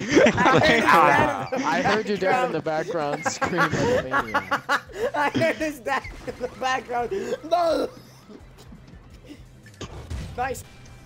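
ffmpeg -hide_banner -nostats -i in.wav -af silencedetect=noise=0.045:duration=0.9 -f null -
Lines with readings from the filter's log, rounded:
silence_start: 7.86
silence_end: 9.81 | silence_duration: 1.95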